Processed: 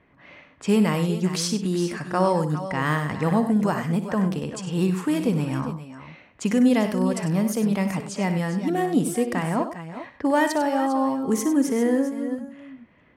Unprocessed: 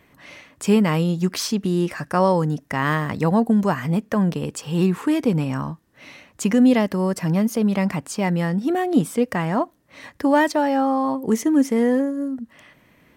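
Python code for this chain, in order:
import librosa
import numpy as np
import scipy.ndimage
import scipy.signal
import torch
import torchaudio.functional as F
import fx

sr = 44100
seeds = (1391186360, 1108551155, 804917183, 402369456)

y = fx.dynamic_eq(x, sr, hz=9500.0, q=0.95, threshold_db=-50.0, ratio=4.0, max_db=7)
y = fx.env_lowpass(y, sr, base_hz=2200.0, full_db=-17.0)
y = fx.echo_multitap(y, sr, ms=(60, 98, 393, 405), db=(-12.0, -11.0, -17.0, -13.0))
y = y * librosa.db_to_amplitude(-3.5)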